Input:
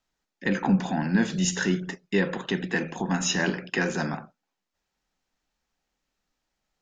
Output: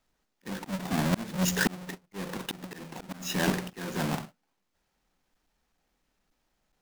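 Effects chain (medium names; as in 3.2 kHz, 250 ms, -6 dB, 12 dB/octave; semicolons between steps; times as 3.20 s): square wave that keeps the level; slow attack 596 ms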